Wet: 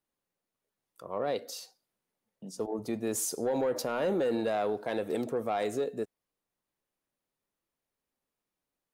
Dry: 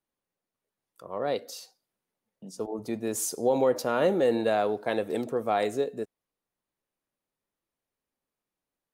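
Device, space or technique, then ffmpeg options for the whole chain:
soft clipper into limiter: -af "asoftclip=type=tanh:threshold=-17.5dB,alimiter=limit=-23dB:level=0:latency=1:release=69"

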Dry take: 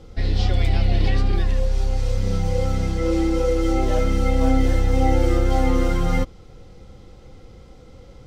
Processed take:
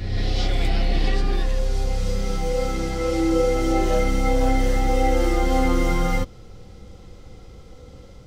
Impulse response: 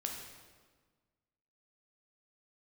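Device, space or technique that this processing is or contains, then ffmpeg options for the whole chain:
reverse reverb: -filter_complex "[0:a]highshelf=f=5.1k:g=5.5,areverse[a];[1:a]atrim=start_sample=2205[b];[a][b]afir=irnorm=-1:irlink=0,areverse"

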